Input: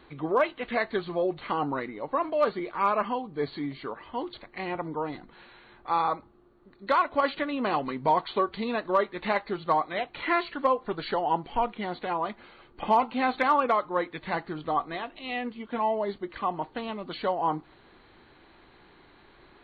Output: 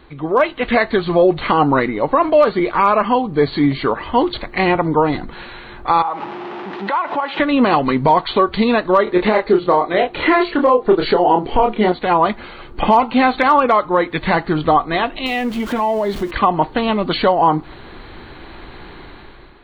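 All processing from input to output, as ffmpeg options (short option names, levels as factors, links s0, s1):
-filter_complex "[0:a]asettb=1/sr,asplit=3[s0][s1][s2];[s0]atrim=end=6.024[s3];[s1]atrim=start=6.02:end=7.4,asetpts=PTS-STARTPTS,afade=t=in:d=0.004:c=qsin,afade=t=out:st=1.376:d=0.004:c=qsin,aeval=exprs='val(0)+0.5*0.00891*sgn(val(0))':c=same,acompressor=threshold=0.0158:ratio=6:attack=3.2:release=140:knee=1:detection=peak,highpass=f=190:w=0.5412,highpass=f=190:w=1.3066,equalizer=f=250:t=q:w=4:g=-9,equalizer=f=530:t=q:w=4:g=-4,equalizer=f=860:t=q:w=4:g=9,lowpass=f=3400:w=0.5412,lowpass=f=3400:w=1.3066[s4];[s2]atrim=start=7.396[s5];[s3][s4]acrossfade=d=0.004:c1=hsin:c2=qsin[s6];[s6][s5]acrossfade=d=0.004:c1=qsin:c2=hsin,asettb=1/sr,asplit=3[s7][s8][s9];[s7]atrim=end=9.044[s10];[s8]atrim=start=9.04:end=11.92,asetpts=PTS-STARTPTS,afade=t=in:d=0.004:c=qsin,afade=t=out:st=2.876:d=0.004:c=qsin,equalizer=f=410:w=1.3:g=10,asplit=2[s11][s12];[s12]adelay=28,volume=0.631[s13];[s11][s13]amix=inputs=2:normalize=0,atrim=end_sample=127008[s14];[s9]atrim=start=11.916[s15];[s10][s14]acrossfade=d=0.004:c1=hsin:c2=qsin[s16];[s16][s15]acrossfade=d=0.004:c1=qsin:c2=hsin,asettb=1/sr,asplit=3[s17][s18][s19];[s17]atrim=end=15.264[s20];[s18]atrim=start=15.26:end=16.31,asetpts=PTS-STARTPTS,afade=t=in:d=0.004:c=qsin,afade=t=out:st=1.046:d=0.004:c=qsin,aeval=exprs='val(0)+0.5*0.00596*sgn(val(0))':c=same,acompressor=threshold=0.0141:ratio=2.5:attack=3.2:release=140:knee=1:detection=peak[s21];[s19]atrim=start=16.306[s22];[s20][s21]acrossfade=d=0.004:c1=hsin:c2=qsin[s23];[s23][s22]acrossfade=d=0.004:c1=qsin:c2=hsin,lowshelf=f=86:g=10,dynaudnorm=f=160:g=7:m=3.76,alimiter=limit=0.299:level=0:latency=1:release=214,volume=2.11"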